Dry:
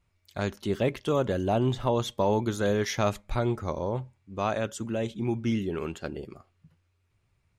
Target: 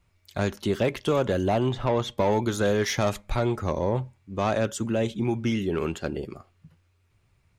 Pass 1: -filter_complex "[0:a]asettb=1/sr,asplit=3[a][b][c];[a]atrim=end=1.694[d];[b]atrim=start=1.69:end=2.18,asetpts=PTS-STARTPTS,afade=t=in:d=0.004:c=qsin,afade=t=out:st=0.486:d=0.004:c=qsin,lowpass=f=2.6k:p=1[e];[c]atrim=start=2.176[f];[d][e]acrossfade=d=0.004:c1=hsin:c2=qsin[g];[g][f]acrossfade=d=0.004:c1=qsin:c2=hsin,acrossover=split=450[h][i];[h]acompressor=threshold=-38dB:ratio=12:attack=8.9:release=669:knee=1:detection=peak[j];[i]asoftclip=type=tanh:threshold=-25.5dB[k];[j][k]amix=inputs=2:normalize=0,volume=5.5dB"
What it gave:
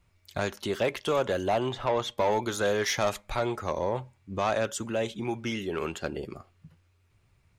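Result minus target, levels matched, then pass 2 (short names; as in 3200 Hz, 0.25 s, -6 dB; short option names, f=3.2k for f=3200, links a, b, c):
compressor: peak gain reduction +9.5 dB
-filter_complex "[0:a]asettb=1/sr,asplit=3[a][b][c];[a]atrim=end=1.694[d];[b]atrim=start=1.69:end=2.18,asetpts=PTS-STARTPTS,afade=t=in:d=0.004:c=qsin,afade=t=out:st=0.486:d=0.004:c=qsin,lowpass=f=2.6k:p=1[e];[c]atrim=start=2.176[f];[d][e]acrossfade=d=0.004:c1=hsin:c2=qsin[g];[g][f]acrossfade=d=0.004:c1=qsin:c2=hsin,acrossover=split=450[h][i];[h]acompressor=threshold=-27.5dB:ratio=12:attack=8.9:release=669:knee=1:detection=peak[j];[i]asoftclip=type=tanh:threshold=-25.5dB[k];[j][k]amix=inputs=2:normalize=0,volume=5.5dB"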